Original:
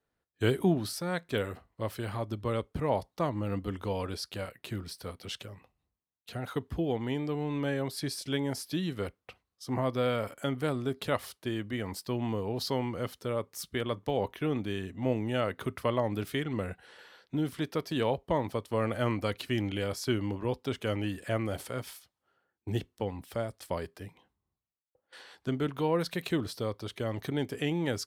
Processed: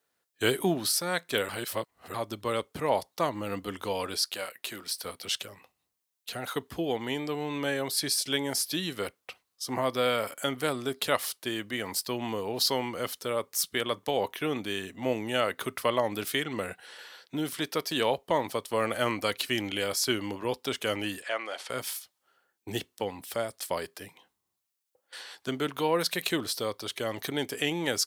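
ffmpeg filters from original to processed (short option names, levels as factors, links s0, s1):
-filter_complex "[0:a]asettb=1/sr,asplit=3[s0][s1][s2];[s0]atrim=end=4.244[s3];[s1]atrim=start=4.24:end=5.05,asetpts=PTS-STARTPTS,afade=t=in:d=0.004:c=qsin,afade=t=out:st=0.806:d=0.004:c=qsin,highpass=f=380:p=1[s4];[s2]atrim=start=5.046[s5];[s3][s4]acrossfade=d=0.004:c1=hsin:c2=qsin[s6];[s6][s5]acrossfade=d=0.004:c1=qsin:c2=hsin,asettb=1/sr,asplit=3[s7][s8][s9];[s7]atrim=end=21.224[s10];[s8]atrim=start=21.22:end=21.7,asetpts=PTS-STARTPTS,afade=t=in:d=0.004:c=qsin,afade=t=out:st=0.476:d=0.004:c=qsin,highpass=630,lowpass=4400[s11];[s9]atrim=start=21.696[s12];[s10][s11]acrossfade=d=0.004:c1=hsin:c2=qsin[s13];[s13][s12]acrossfade=d=0.004:c1=qsin:c2=hsin,asplit=3[s14][s15][s16];[s14]atrim=end=1.492[s17];[s15]atrim=start=1.488:end=2.142,asetpts=PTS-STARTPTS,areverse[s18];[s16]atrim=start=2.138[s19];[s17][s18]acrossfade=d=0.004:c1=hsin:c2=hsin[s20];[s20][s19]acrossfade=d=0.004:c1=hsin:c2=hsin,highpass=f=460:p=1,highshelf=f=3600:g=9,volume=1.68"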